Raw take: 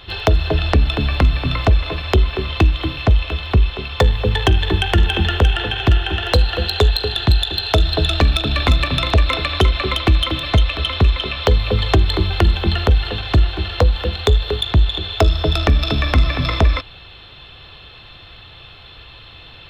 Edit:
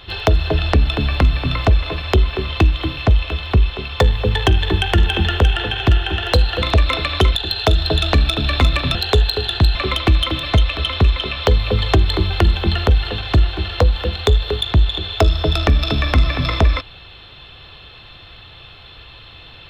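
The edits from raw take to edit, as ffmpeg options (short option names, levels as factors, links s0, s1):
-filter_complex "[0:a]asplit=5[s0][s1][s2][s3][s4];[s0]atrim=end=6.622[s5];[s1]atrim=start=9.018:end=9.752[s6];[s2]atrim=start=7.418:end=9.022[s7];[s3]atrim=start=6.618:end=7.422[s8];[s4]atrim=start=9.748[s9];[s5][s6]acrossfade=d=0.004:c1=hsin:c2=hsin[s10];[s10][s7]acrossfade=d=0.004:c1=hsin:c2=hsin[s11];[s11][s8]acrossfade=d=0.004:c1=hsin:c2=hsin[s12];[s12][s9]acrossfade=d=0.004:c1=hsin:c2=hsin"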